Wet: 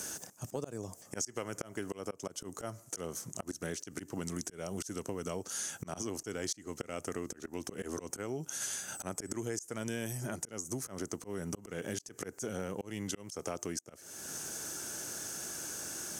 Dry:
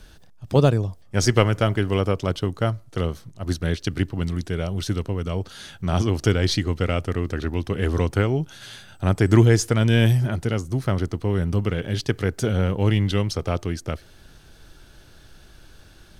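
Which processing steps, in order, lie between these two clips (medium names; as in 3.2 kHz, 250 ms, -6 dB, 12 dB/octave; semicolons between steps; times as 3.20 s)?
high-pass 230 Hz 12 dB/octave; resonant high shelf 5.1 kHz +10 dB, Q 3; slow attack 483 ms; compression 8:1, threshold -43 dBFS, peak gain reduction 24 dB; trim +8 dB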